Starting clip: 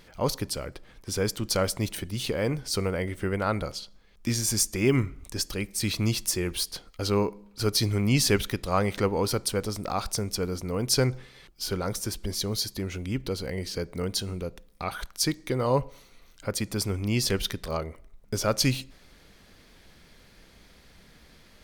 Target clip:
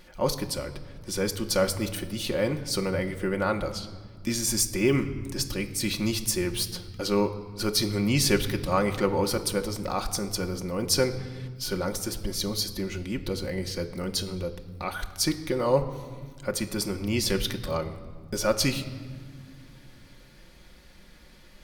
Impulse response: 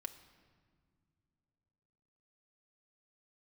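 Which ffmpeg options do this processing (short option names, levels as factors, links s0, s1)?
-filter_complex "[1:a]atrim=start_sample=2205[s0];[0:a][s0]afir=irnorm=-1:irlink=0,volume=1.58"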